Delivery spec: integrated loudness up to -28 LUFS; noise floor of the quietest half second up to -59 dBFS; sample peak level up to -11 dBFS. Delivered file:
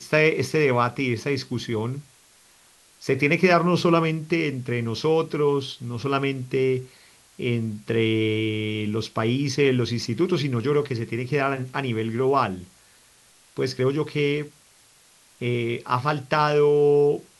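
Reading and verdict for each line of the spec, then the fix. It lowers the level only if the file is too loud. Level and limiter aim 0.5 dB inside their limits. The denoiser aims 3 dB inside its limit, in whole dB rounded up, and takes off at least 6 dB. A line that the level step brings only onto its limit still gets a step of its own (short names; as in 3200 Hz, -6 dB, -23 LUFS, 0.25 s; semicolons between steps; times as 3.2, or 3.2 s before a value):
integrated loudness -23.5 LUFS: fail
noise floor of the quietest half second -56 dBFS: fail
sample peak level -5.5 dBFS: fail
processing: gain -5 dB; limiter -11.5 dBFS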